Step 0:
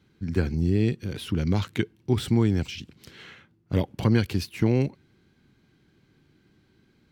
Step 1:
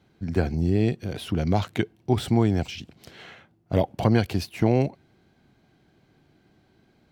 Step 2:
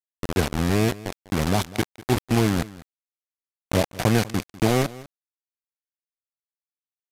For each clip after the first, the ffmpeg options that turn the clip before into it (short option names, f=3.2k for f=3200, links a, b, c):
-af "equalizer=f=690:w=2.3:g=13.5"
-af "acrusher=bits=3:mix=0:aa=0.000001,aecho=1:1:197:0.112,aresample=32000,aresample=44100"